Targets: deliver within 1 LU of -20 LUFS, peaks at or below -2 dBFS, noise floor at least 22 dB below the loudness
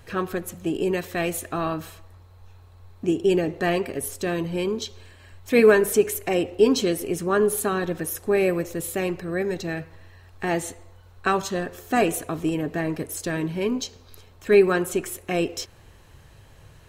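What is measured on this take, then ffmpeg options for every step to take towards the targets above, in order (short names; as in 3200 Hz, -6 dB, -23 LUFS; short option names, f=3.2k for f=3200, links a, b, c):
loudness -24.0 LUFS; peak -4.0 dBFS; loudness target -20.0 LUFS
-> -af "volume=4dB,alimiter=limit=-2dB:level=0:latency=1"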